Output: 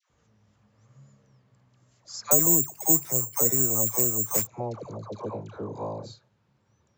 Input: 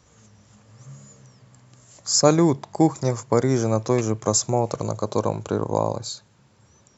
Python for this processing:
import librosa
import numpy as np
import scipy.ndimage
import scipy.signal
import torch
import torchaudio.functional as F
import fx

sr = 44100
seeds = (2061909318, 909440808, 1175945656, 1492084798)

y = fx.air_absorb(x, sr, metres=130.0)
y = fx.dispersion(y, sr, late='lows', ms=100.0, hz=910.0)
y = fx.resample_bad(y, sr, factor=6, down='none', up='zero_stuff', at=(2.31, 4.47))
y = F.gain(torch.from_numpy(y), -10.5).numpy()